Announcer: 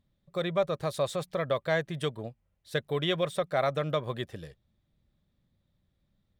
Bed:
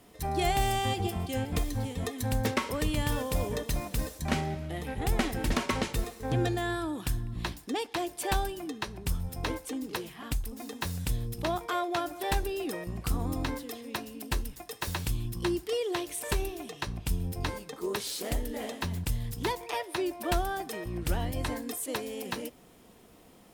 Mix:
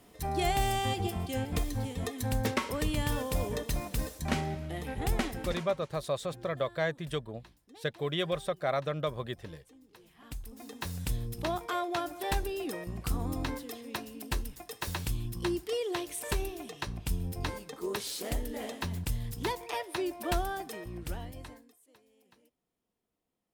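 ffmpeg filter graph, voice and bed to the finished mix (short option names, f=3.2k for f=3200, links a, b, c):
-filter_complex "[0:a]adelay=5100,volume=-3dB[a];[1:a]volume=19.5dB,afade=t=out:st=5.1:d=0.66:silence=0.0841395,afade=t=in:st=9.97:d=1.11:silence=0.0891251,afade=t=out:st=20.45:d=1.28:silence=0.0421697[b];[a][b]amix=inputs=2:normalize=0"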